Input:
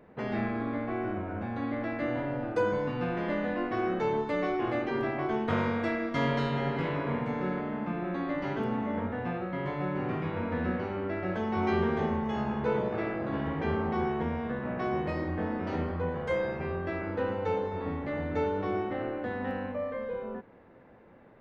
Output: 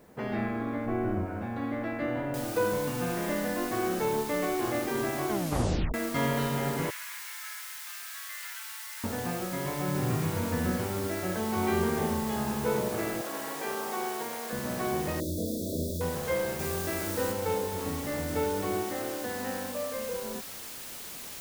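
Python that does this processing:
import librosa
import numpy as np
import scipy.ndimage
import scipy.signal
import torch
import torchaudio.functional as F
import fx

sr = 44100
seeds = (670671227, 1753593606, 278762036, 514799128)

y = fx.tilt_eq(x, sr, slope=-2.0, at=(0.86, 1.26))
y = fx.noise_floor_step(y, sr, seeds[0], at_s=2.34, before_db=-68, after_db=-42, tilt_db=0.0)
y = fx.highpass(y, sr, hz=1500.0, slope=24, at=(6.9, 9.04))
y = fx.peak_eq(y, sr, hz=120.0, db=11.0, octaves=0.62, at=(9.87, 11.07))
y = fx.highpass(y, sr, hz=460.0, slope=12, at=(13.21, 14.53))
y = fx.brickwall_bandstop(y, sr, low_hz=690.0, high_hz=3300.0, at=(15.2, 16.01))
y = fx.high_shelf(y, sr, hz=4300.0, db=5.0, at=(16.59, 17.32))
y = fx.low_shelf(y, sr, hz=160.0, db=-8.0, at=(18.83, 19.94))
y = fx.edit(y, sr, fx.tape_stop(start_s=5.3, length_s=0.64), tone=tone)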